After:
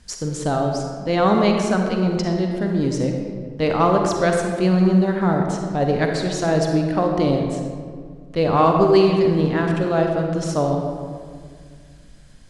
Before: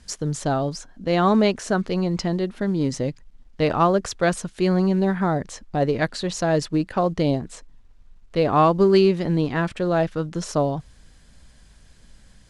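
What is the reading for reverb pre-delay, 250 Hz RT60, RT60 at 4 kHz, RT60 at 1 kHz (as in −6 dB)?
38 ms, 2.5 s, 1.1 s, 1.8 s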